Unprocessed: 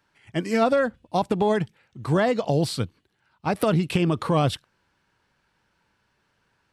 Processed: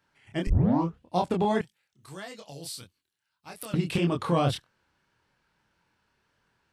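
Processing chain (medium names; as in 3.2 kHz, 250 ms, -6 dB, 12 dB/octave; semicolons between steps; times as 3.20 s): 0.47 s: tape start 0.53 s; chorus 1.7 Hz, depth 7.3 ms; 1.61–3.74 s: pre-emphasis filter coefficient 0.9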